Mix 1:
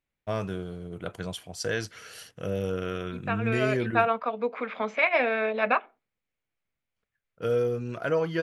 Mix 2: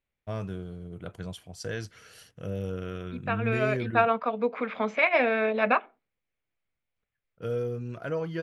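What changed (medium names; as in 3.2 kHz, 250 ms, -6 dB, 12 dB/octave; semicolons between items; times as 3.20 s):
first voice -7.0 dB; master: add bass shelf 210 Hz +9 dB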